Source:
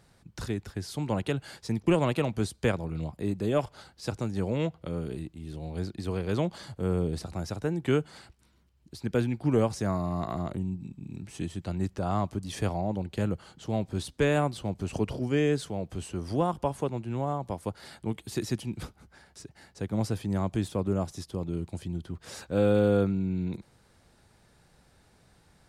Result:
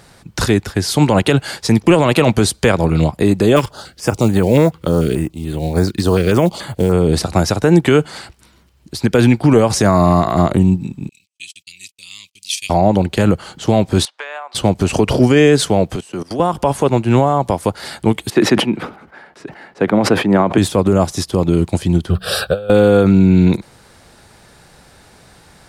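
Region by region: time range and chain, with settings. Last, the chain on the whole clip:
3.56–6.92 s: short-mantissa float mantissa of 4-bit + step-sequenced notch 6.9 Hz 680–5400 Hz
11.09–12.70 s: gate -40 dBFS, range -59 dB + elliptic high-pass 2.4 kHz
14.05–14.55 s: high-pass 760 Hz 24 dB/octave + tape spacing loss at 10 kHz 26 dB + compression 16:1, threshold -42 dBFS
15.96–16.40 s: Bessel high-pass 160 Hz, order 8 + level held to a coarse grid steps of 20 dB
18.30–20.58 s: three-band isolator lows -22 dB, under 170 Hz, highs -21 dB, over 2.8 kHz + decay stretcher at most 120 dB/s
22.10–22.70 s: de-hum 61.78 Hz, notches 3 + compressor with a negative ratio -31 dBFS, ratio -0.5 + static phaser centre 1.4 kHz, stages 8
whole clip: bass shelf 270 Hz -6 dB; loudness maximiser +26 dB; upward expansion 1.5:1, over -22 dBFS

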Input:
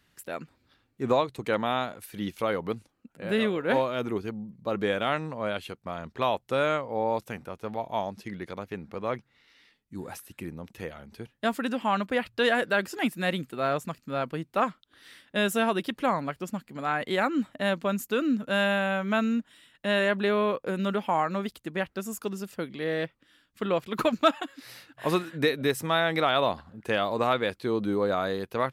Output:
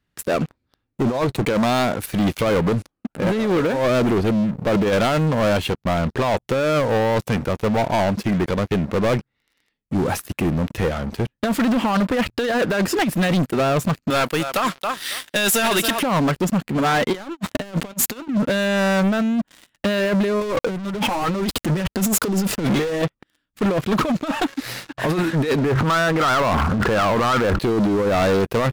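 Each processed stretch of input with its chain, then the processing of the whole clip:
14.10–16.03 s: tilt EQ +4.5 dB/octave + feedback delay 274 ms, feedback 15%, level -16 dB
17.14–18.28 s: high-pass 42 Hz 24 dB/octave + treble shelf 2.4 kHz +8 dB + waveshaping leveller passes 3
20.41–23.02 s: flange 1.1 Hz, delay 1.9 ms, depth 4.2 ms, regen +40% + waveshaping leveller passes 5
25.58–27.59 s: four-pole ladder low-pass 1.5 kHz, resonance 60% + level flattener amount 100%
whole clip: tilt EQ -1.5 dB/octave; compressor with a negative ratio -27 dBFS, ratio -0.5; waveshaping leveller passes 5; trim -3.5 dB

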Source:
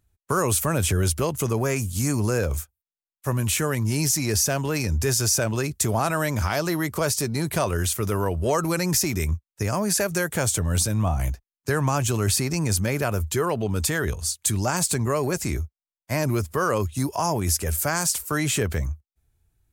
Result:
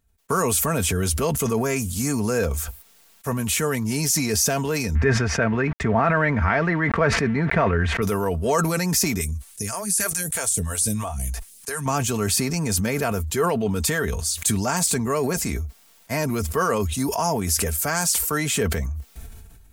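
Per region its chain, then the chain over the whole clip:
4.95–8.02 s: tilt EQ -1.5 dB/octave + small samples zeroed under -35.5 dBFS + resonant low-pass 1.9 kHz, resonance Q 2.8
9.21–11.86 s: peaking EQ 9.7 kHz +14.5 dB 0.83 oct + compression 2.5:1, threshold -25 dBFS + phase shifter stages 2, 3.1 Hz, lowest notch 150–1300 Hz
whole clip: comb 4.4 ms, depth 50%; decay stretcher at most 32 dB/s

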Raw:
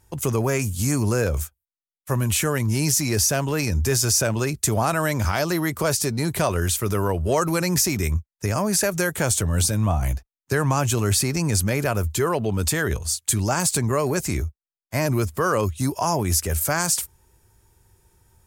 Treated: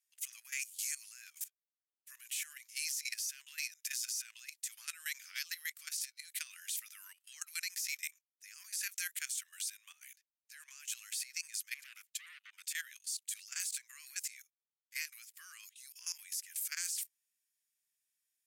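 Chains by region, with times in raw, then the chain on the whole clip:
11.74–12.68 s: steep high-pass 300 Hz + tilt EQ -2 dB/octave + transformer saturation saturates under 1.3 kHz
whole clip: steep high-pass 1.9 kHz 36 dB/octave; level held to a coarse grid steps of 16 dB; trim -6 dB

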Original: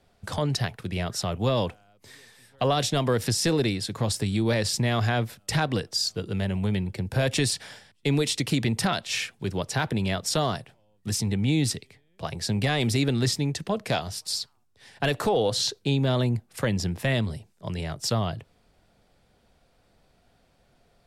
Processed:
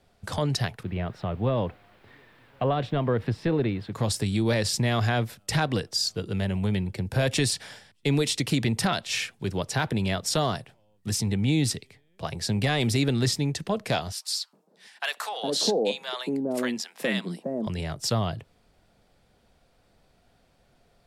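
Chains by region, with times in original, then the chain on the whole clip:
0.83–3.93 s: word length cut 8-bit, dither triangular + distance through air 490 m
14.12–17.67 s: steep high-pass 180 Hz 48 dB/octave + bands offset in time highs, lows 410 ms, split 780 Hz
whole clip: none

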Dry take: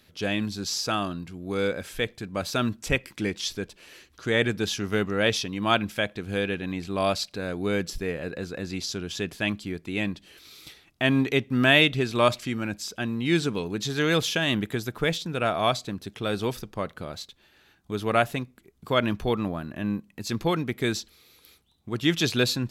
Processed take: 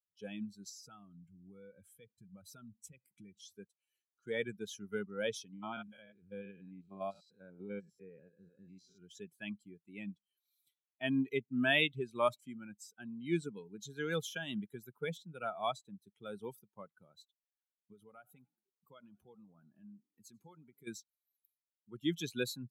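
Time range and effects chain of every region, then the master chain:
0.69–3.54 s: bass shelf 170 Hz +10 dB + compression 5:1, threshold -29 dBFS
5.53–9.02 s: spectrogram pixelated in time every 100 ms + treble shelf 8 kHz -10 dB
17.92–20.87 s: compression 4:1, threshold -32 dBFS + frequency-shifting echo 93 ms, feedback 60%, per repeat +44 Hz, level -16 dB
whole clip: expander on every frequency bin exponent 2; high-pass 150 Hz 24 dB/octave; peaking EQ 4.8 kHz -12.5 dB 0.35 oct; trim -7.5 dB

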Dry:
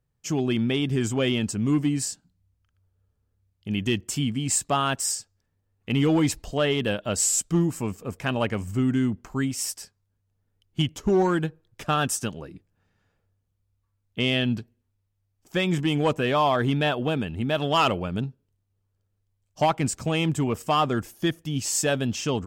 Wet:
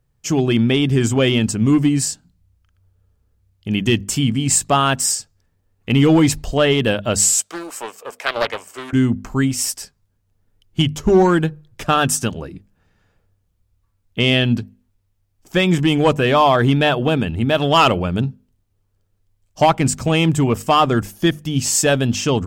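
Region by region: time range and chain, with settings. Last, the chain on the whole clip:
7.34–8.93 s: high-pass 500 Hz 24 dB/octave + band-stop 7.3 kHz, Q 25 + loudspeaker Doppler distortion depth 0.34 ms
whole clip: bass shelf 70 Hz +7.5 dB; hum notches 50/100/150/200/250 Hz; trim +8 dB

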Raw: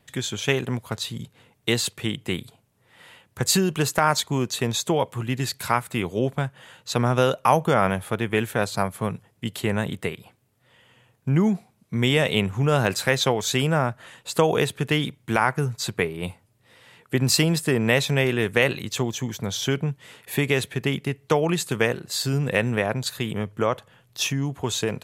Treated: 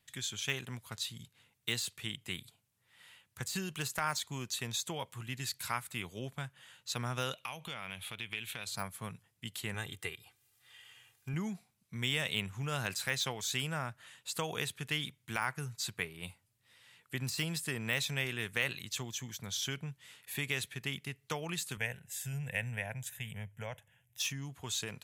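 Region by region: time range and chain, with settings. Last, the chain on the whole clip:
7.33–8.67 s: high-order bell 3 kHz +10.5 dB 1.1 oct + compression 3:1, threshold -27 dBFS
9.74–11.34 s: comb 2.5 ms, depth 61% + tape noise reduction on one side only encoder only
21.77–24.20 s: bass shelf 160 Hz +6.5 dB + static phaser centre 1.2 kHz, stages 6
whole clip: de-esser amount 50%; amplifier tone stack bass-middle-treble 5-5-5

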